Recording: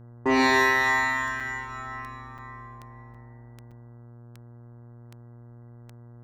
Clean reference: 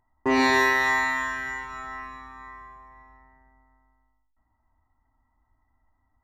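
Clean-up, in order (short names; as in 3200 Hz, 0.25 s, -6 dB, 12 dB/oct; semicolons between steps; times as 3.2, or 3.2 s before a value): de-click; de-hum 118.9 Hz, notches 14; interpolate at 1.4/2.38/3.14/3.71, 5.6 ms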